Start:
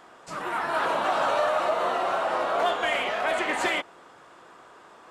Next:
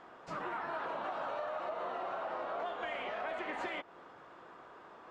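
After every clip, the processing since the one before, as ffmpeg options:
-af "aemphasis=mode=reproduction:type=75fm,acompressor=threshold=-33dB:ratio=6,equalizer=f=8.8k:t=o:w=0.42:g=-7,volume=-3.5dB"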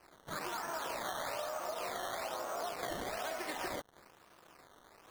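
-af "lowpass=f=5.6k:t=q:w=5.6,acrusher=samples=12:mix=1:aa=0.000001:lfo=1:lforange=12:lforate=1.1,aeval=exprs='sgn(val(0))*max(abs(val(0))-0.00168,0)':c=same"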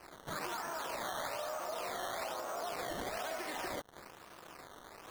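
-af "alimiter=level_in=15.5dB:limit=-24dB:level=0:latency=1:release=152,volume=-15.5dB,volume=7.5dB"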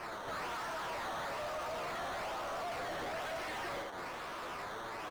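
-filter_complex "[0:a]flanger=delay=8.7:depth=3.9:regen=39:speed=0.82:shape=sinusoidal,aecho=1:1:79:0.2,asplit=2[a][b];[b]highpass=f=720:p=1,volume=35dB,asoftclip=type=tanh:threshold=-32dB[c];[a][c]amix=inputs=2:normalize=0,lowpass=f=2.5k:p=1,volume=-6dB,volume=-1.5dB"

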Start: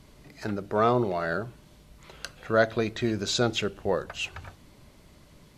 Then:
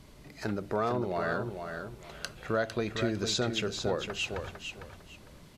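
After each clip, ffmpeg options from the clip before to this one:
-af "acompressor=threshold=-28dB:ratio=3,aecho=1:1:453|906|1359:0.447|0.107|0.0257"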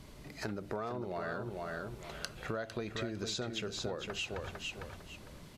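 -af "acompressor=threshold=-37dB:ratio=4,volume=1dB"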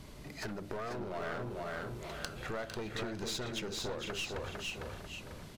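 -af "aecho=1:1:493:0.355,aeval=exprs='clip(val(0),-1,0.00841)':c=same,volume=2dB"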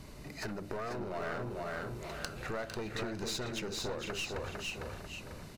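-af "bandreject=f=3.3k:w=9.4,volume=1dB"

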